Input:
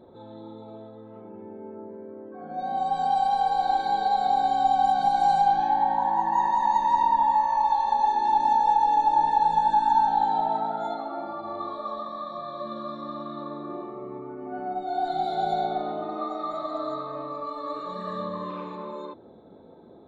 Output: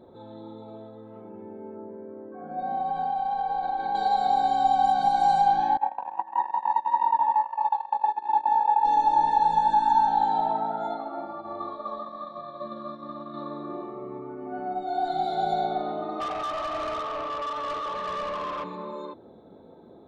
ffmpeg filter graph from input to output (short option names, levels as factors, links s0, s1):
-filter_complex "[0:a]asettb=1/sr,asplit=3[s0][s1][s2];[s0]atrim=end=1.774[s3];[s1]atrim=start=1.77:end=3.95,asetpts=PTS-STARTPTS,afade=t=in:d=0.004:c=qsin,afade=t=out:st=2.176:d=0.004:c=qsin,lowpass=2400,acompressor=threshold=0.0631:ratio=6:attack=3.2:release=140:knee=1:detection=peak[s4];[s2]atrim=start=3.946[s5];[s3][s4]acrossfade=d=0.004:c1=hsin:c2=qsin[s6];[s6][s5]acrossfade=d=0.004:c1=qsin:c2=hsin,asettb=1/sr,asplit=3[s7][s8][s9];[s7]atrim=end=5.774[s10];[s8]atrim=start=5.77:end=8.85,asetpts=PTS-STARTPTS,afade=t=in:d=0.004:c=qsin,afade=t=out:st=3.076:d=0.004:c=qsin,highpass=420,lowpass=2400,agate=range=0.112:threshold=0.0708:ratio=16:release=100:detection=peak[s11];[s9]atrim=start=8.846[s12];[s10][s11]acrossfade=d=0.004:c1=hsin:c2=qsin[s13];[s13][s12]acrossfade=d=0.004:c1=qsin:c2=hsin,asettb=1/sr,asplit=3[s14][s15][s16];[s14]atrim=end=10.514[s17];[s15]atrim=start=10.51:end=13.34,asetpts=PTS-STARTPTS,afade=t=in:d=0.004:c=qsin,afade=t=out:st=2.826:d=0.004:c=qsin,lowpass=f=3100:p=1,agate=range=0.0224:threshold=0.0224:ratio=3:release=100:detection=peak[s18];[s16]atrim=start=13.336[s19];[s17][s18]acrossfade=d=0.004:c1=hsin:c2=qsin[s20];[s20][s19]acrossfade=d=0.004:c1=qsin:c2=hsin,asettb=1/sr,asplit=3[s21][s22][s23];[s21]atrim=end=16.204[s24];[s22]atrim=start=16.2:end=18.64,asetpts=PTS-STARTPTS,afade=t=in:d=0.004:c=qsin,afade=t=out:st=2.436:d=0.004:c=qsin,bass=f=250:g=-8,treble=f=4000:g=-13,flanger=delay=5:depth=9.5:regen=-83:speed=1.2:shape=triangular,asplit=2[s25][s26];[s26]highpass=f=720:p=1,volume=11.2,asoftclip=type=tanh:threshold=0.0631[s27];[s25][s27]amix=inputs=2:normalize=0,lowpass=f=4800:p=1,volume=0.501[s28];[s23]atrim=start=18.636[s29];[s24][s28]acrossfade=d=0.004:c1=hsin:c2=qsin[s30];[s30][s29]acrossfade=d=0.004:c1=qsin:c2=hsin"